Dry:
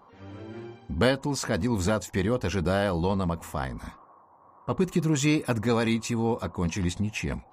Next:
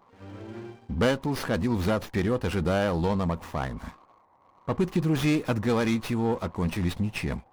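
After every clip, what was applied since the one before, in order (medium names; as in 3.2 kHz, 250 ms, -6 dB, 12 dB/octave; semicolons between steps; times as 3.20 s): waveshaping leveller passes 1; sliding maximum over 5 samples; trim -3 dB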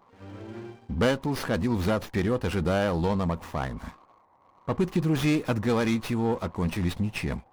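no audible change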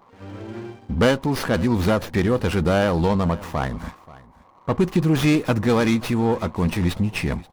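delay 531 ms -20.5 dB; trim +6 dB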